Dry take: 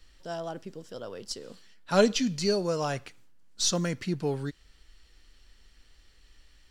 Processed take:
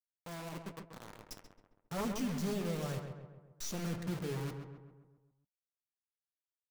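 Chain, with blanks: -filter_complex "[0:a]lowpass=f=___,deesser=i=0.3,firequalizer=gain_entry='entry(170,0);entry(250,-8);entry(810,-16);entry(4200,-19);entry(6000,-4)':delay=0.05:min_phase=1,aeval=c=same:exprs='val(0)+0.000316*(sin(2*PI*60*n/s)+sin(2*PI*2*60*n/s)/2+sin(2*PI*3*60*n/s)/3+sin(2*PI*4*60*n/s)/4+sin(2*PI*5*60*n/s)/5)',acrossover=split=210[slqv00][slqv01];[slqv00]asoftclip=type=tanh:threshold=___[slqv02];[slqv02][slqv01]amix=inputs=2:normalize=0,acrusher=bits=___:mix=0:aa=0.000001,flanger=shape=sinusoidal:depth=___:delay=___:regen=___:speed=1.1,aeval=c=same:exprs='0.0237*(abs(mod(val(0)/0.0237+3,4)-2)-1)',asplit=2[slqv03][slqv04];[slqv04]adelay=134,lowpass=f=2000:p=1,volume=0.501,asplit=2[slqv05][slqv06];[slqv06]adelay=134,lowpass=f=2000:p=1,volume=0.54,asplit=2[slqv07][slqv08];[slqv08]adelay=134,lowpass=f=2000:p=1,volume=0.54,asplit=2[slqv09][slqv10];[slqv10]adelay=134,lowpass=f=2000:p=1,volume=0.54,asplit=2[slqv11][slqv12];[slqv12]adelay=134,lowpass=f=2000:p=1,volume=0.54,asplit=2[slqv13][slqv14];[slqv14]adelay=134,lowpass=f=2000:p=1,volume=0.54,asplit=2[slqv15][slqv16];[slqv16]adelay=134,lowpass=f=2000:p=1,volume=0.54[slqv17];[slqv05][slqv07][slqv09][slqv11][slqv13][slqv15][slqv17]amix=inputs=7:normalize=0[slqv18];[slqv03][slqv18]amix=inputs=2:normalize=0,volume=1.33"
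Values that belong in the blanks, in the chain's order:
3800, 0.01, 6, 3.8, 7.6, -64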